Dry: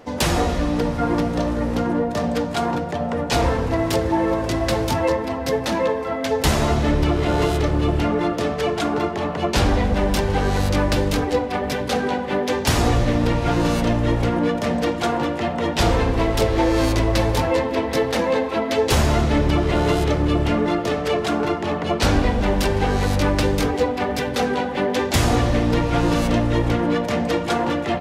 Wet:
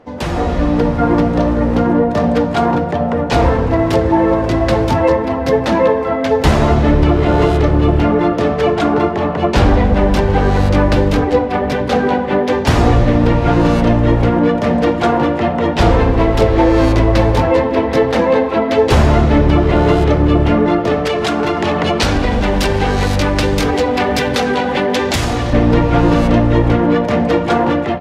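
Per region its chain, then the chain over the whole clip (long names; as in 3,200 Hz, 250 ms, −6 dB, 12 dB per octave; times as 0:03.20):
0:21.05–0:25.53: downward compressor, threshold −21 dBFS + high-shelf EQ 2,300 Hz +12 dB
whole clip: low-pass filter 1,900 Hz 6 dB per octave; automatic gain control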